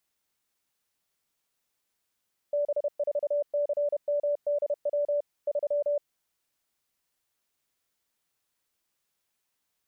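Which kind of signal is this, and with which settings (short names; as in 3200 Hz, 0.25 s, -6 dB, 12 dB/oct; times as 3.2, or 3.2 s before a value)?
Morse "B4CMDW 3" 31 wpm 582 Hz -23.5 dBFS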